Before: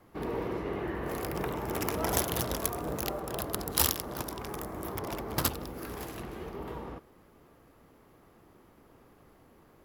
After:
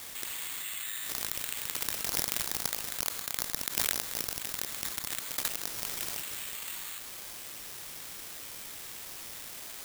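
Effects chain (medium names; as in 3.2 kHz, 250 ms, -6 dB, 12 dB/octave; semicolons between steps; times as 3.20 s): Bessel high-pass 2.9 kHz, order 4; careless resampling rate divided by 8×, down none, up zero stuff; level flattener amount 70%; trim -13.5 dB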